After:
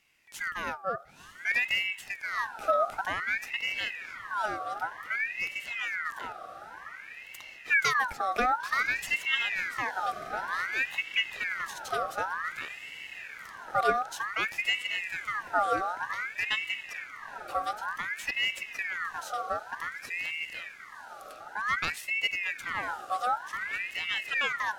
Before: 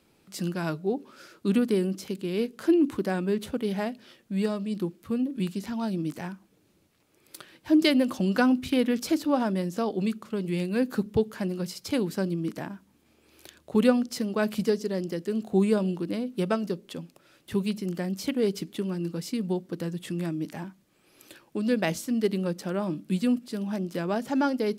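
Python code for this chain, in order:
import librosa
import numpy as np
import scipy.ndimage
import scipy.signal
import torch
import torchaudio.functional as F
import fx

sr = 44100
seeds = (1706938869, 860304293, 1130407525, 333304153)

y = fx.echo_diffused(x, sr, ms=1018, feedback_pct=68, wet_db=-13.0)
y = fx.ring_lfo(y, sr, carrier_hz=1700.0, swing_pct=45, hz=0.54)
y = y * 10.0 ** (-2.0 / 20.0)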